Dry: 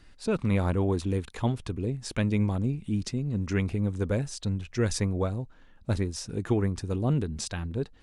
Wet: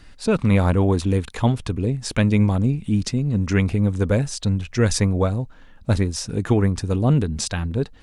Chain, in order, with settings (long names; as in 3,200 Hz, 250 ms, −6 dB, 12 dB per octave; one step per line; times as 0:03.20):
parametric band 360 Hz −4.5 dB 0.28 octaves
level +8.5 dB